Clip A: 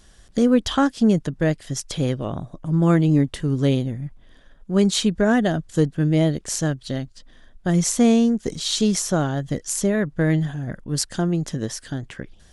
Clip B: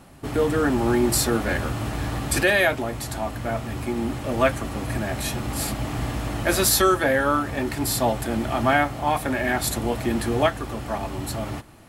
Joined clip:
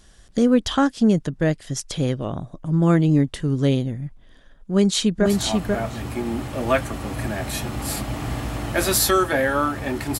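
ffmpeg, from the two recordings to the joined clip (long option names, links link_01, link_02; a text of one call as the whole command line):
ffmpeg -i cue0.wav -i cue1.wav -filter_complex "[0:a]apad=whole_dur=10.19,atrim=end=10.19,atrim=end=5.262[link_01];[1:a]atrim=start=2.968:end=7.9[link_02];[link_01][link_02]acrossfade=duration=0.004:curve1=hsin:curve2=hsin,asplit=2[link_03][link_04];[link_04]afade=type=in:start_time=4.51:duration=0.01,afade=type=out:start_time=5.26:duration=0.01,aecho=0:1:490|980:0.707946|0.0707946[link_05];[link_03][link_05]amix=inputs=2:normalize=0" out.wav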